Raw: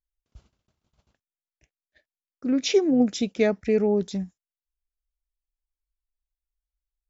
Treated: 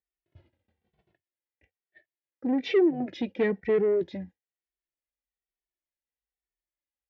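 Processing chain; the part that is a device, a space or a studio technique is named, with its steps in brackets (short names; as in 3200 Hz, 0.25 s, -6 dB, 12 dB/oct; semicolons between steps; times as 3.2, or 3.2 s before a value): barber-pole flanger into a guitar amplifier (endless flanger 2.2 ms -1.1 Hz; soft clip -23.5 dBFS, distortion -9 dB; speaker cabinet 82–3400 Hz, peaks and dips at 89 Hz +7 dB, 350 Hz +9 dB, 510 Hz +6 dB, 770 Hz +4 dB, 1200 Hz -10 dB, 1900 Hz +9 dB)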